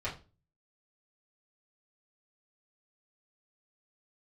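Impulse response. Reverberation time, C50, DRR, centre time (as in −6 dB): 0.30 s, 11.0 dB, −10.0 dB, 18 ms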